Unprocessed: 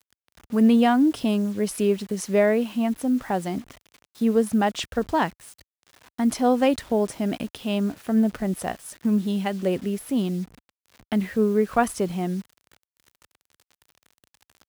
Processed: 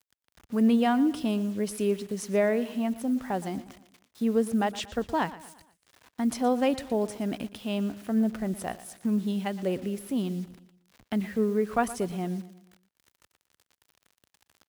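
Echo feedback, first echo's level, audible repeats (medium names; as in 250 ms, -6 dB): 45%, -16.5 dB, 3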